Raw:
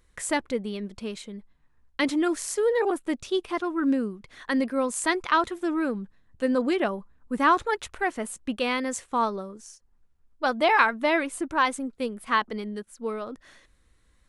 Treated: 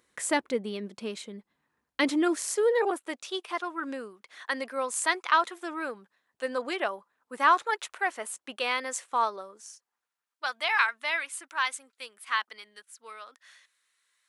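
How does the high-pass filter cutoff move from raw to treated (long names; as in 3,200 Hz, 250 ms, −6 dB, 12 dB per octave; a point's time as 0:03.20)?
0:02.47 230 Hz
0:03.18 640 Hz
0:09.62 640 Hz
0:10.55 1,500 Hz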